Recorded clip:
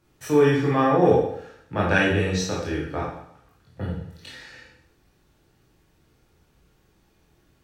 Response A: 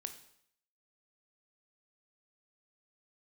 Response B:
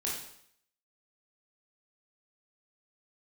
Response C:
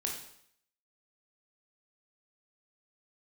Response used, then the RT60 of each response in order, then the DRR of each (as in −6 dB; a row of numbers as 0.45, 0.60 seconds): B; 0.65, 0.65, 0.65 seconds; 7.5, −5.0, −0.5 decibels